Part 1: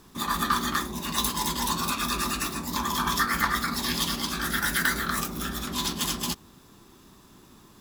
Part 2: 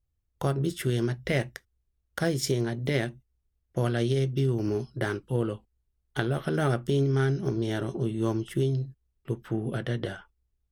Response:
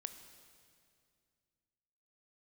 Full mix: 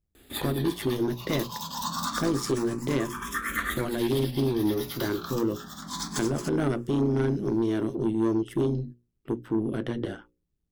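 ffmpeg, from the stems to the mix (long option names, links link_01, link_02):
-filter_complex "[0:a]asplit=2[link_01][link_02];[link_02]afreqshift=0.27[link_03];[link_01][link_03]amix=inputs=2:normalize=1,adelay=150,volume=2dB[link_04];[1:a]tremolo=f=110:d=0.667,equalizer=frequency=300:width=1.2:gain=11,asoftclip=type=tanh:threshold=-17.5dB,volume=0dB,asplit=2[link_05][link_06];[link_06]apad=whole_len=350783[link_07];[link_04][link_07]sidechaincompress=threshold=-34dB:ratio=4:attack=31:release=1050[link_08];[link_08][link_05]amix=inputs=2:normalize=0,bandreject=frequency=60:width_type=h:width=6,bandreject=frequency=120:width_type=h:width=6,bandreject=frequency=180:width_type=h:width=6,bandreject=frequency=240:width_type=h:width=6,bandreject=frequency=300:width_type=h:width=6,bandreject=frequency=360:width_type=h:width=6,bandreject=frequency=420:width_type=h:width=6,bandreject=frequency=480:width_type=h:width=6,bandreject=frequency=540:width_type=h:width=6"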